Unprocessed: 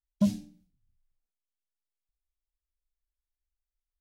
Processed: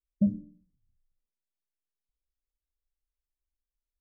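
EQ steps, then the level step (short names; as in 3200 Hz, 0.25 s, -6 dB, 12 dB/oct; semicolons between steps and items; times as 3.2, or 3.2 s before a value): elliptic low-pass 560 Hz, stop band 40 dB; 0.0 dB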